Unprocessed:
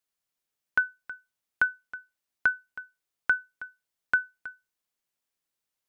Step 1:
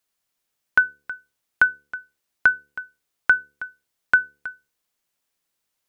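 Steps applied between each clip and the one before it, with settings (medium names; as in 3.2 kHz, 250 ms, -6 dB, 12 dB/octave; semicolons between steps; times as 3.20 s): de-hum 72.3 Hz, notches 7; trim +7.5 dB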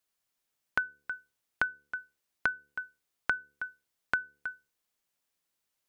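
compression 4:1, threshold -23 dBFS, peak gain reduction 10 dB; trim -4.5 dB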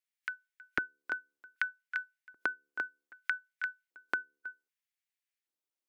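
reverse echo 496 ms -5.5 dB; spectral noise reduction 9 dB; LFO high-pass square 0.64 Hz 320–2000 Hz; trim -4 dB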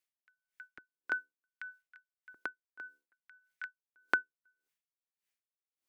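logarithmic tremolo 1.7 Hz, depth 38 dB; trim +4.5 dB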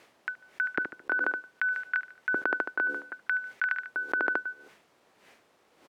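band-pass filter 470 Hz, Q 0.67; feedback delay 73 ms, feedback 41%, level -21.5 dB; level flattener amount 100%; trim +3.5 dB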